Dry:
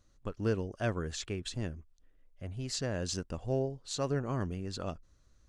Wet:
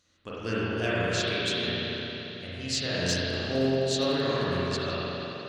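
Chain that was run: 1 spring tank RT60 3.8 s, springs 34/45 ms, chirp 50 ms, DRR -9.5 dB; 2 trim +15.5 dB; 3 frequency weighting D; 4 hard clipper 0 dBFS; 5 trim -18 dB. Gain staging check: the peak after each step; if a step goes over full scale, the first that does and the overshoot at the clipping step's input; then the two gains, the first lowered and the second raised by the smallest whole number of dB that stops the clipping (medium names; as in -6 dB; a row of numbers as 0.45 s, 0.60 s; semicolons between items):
-11.0 dBFS, +4.5 dBFS, +3.5 dBFS, 0.0 dBFS, -18.0 dBFS; step 2, 3.5 dB; step 2 +11.5 dB, step 5 -14 dB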